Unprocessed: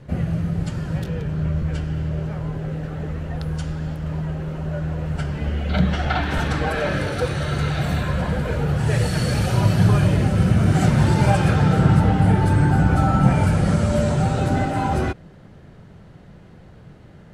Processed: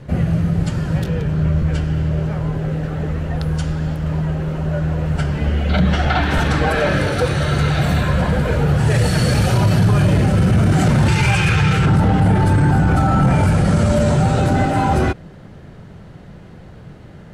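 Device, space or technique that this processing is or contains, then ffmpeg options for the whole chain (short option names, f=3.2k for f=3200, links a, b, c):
soft clipper into limiter: -filter_complex "[0:a]asettb=1/sr,asplit=3[a][b][c];[a]atrim=end=11.084[d];[b]atrim=start=11.08:end=11.87,asetpts=PTS-STARTPTS,afade=t=in:d=0.004:c=qsin,afade=t=out:st=0.786:d=0.004:c=qsin,equalizer=f=250:t=o:w=0.67:g=-11,equalizer=f=630:t=o:w=0.67:g=-11,equalizer=f=2.5k:t=o:w=0.67:g=11,equalizer=f=6.3k:t=o:w=0.67:g=4[e];[c]atrim=start=11.866[f];[d][e]acrossfade=d=0.004:c1=hsin:c2=qsin[g];[g][f]acrossfade=d=0.004:c1=qsin:c2=hsin,asoftclip=type=tanh:threshold=-7.5dB,alimiter=limit=-13.5dB:level=0:latency=1:release=17,volume=6dB"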